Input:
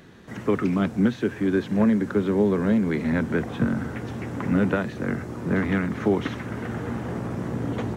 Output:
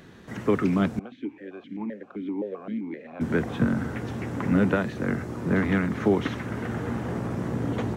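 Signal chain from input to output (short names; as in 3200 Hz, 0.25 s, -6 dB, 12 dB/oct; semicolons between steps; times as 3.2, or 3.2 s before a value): 0.99–3.21 vowel sequencer 7.7 Hz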